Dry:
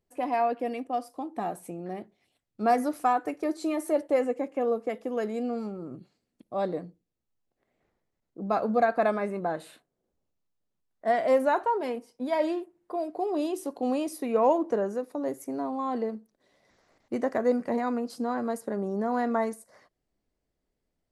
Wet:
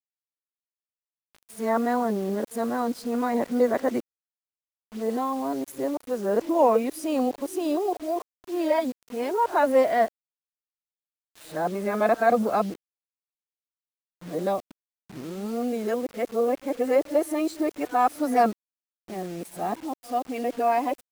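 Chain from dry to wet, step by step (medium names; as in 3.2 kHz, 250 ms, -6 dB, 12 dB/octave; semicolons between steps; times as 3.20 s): reverse the whole clip; bit crusher 8-bit; trim +3 dB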